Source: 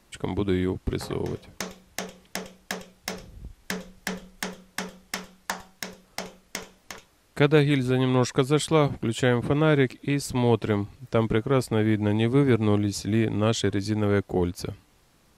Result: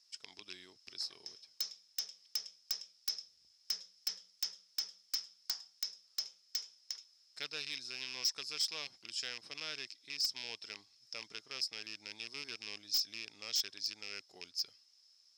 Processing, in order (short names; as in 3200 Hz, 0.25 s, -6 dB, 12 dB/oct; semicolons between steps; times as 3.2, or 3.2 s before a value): rattling part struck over -22 dBFS, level -18 dBFS; band-pass 5200 Hz, Q 17; wavefolder -38.5 dBFS; gain +13 dB